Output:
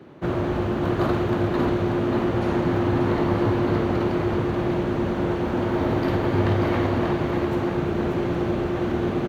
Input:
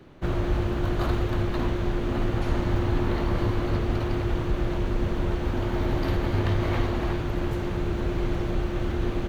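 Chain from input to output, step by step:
high-pass filter 140 Hz 12 dB per octave
high-shelf EQ 2,200 Hz −9 dB
on a send: multi-tap delay 50/588 ms −10.5/−5.5 dB
on the sum: level +6 dB

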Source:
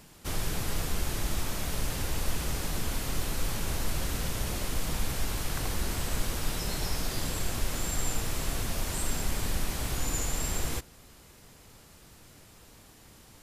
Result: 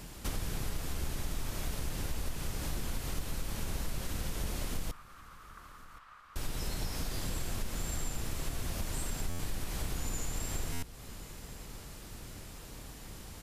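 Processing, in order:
sub-octave generator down 2 octaves, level +4 dB
downward compressor 3 to 1, threshold −40 dBFS, peak gain reduction 15.5 dB
0:04.91–0:06.36: four-pole ladder band-pass 1,300 Hz, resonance 75%
repeating echo 1,072 ms, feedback 25%, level −20 dB
buffer that repeats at 0:09.29/0:10.72, samples 512, times 8
level +4.5 dB

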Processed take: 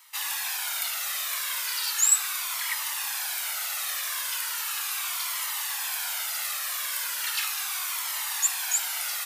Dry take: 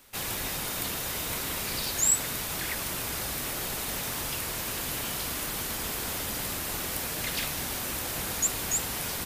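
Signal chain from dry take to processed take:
high-pass filter 950 Hz 24 dB per octave
flanger whose copies keep moving one way falling 0.37 Hz
level +7.5 dB

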